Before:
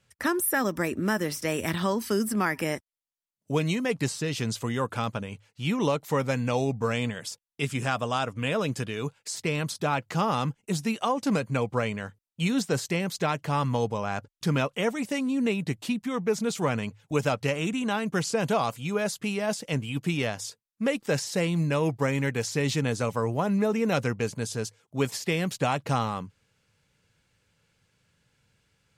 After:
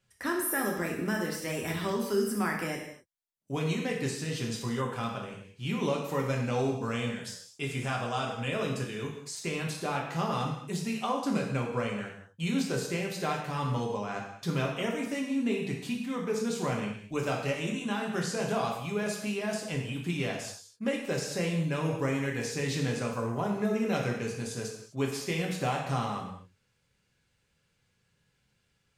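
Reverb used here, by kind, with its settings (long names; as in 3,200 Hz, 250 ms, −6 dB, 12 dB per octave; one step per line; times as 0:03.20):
reverb whose tail is shaped and stops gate 280 ms falling, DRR −1 dB
level −7.5 dB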